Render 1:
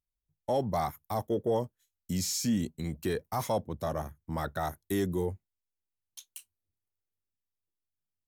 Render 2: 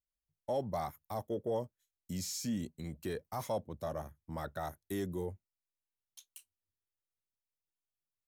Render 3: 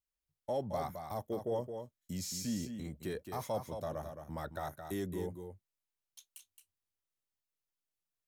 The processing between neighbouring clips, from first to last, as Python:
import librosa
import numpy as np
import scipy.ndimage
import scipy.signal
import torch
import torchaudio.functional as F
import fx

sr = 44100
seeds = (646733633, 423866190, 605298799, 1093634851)

y1 = fx.peak_eq(x, sr, hz=580.0, db=4.0, octaves=0.29)
y1 = y1 * 10.0 ** (-7.5 / 20.0)
y2 = y1 + 10.0 ** (-7.5 / 20.0) * np.pad(y1, (int(219 * sr / 1000.0), 0))[:len(y1)]
y2 = y2 * 10.0 ** (-1.0 / 20.0)